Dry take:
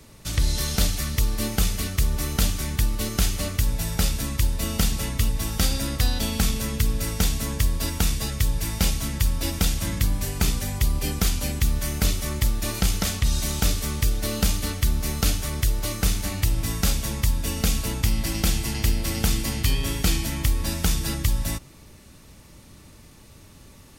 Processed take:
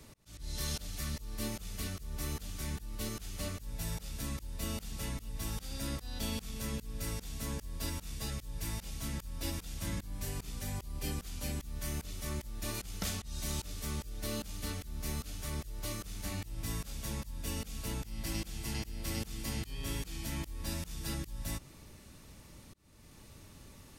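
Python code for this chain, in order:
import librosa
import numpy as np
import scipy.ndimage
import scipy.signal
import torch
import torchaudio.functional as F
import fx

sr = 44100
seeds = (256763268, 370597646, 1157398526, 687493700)

y = fx.auto_swell(x, sr, attack_ms=447.0)
y = y * librosa.db_to_amplitude(-5.5)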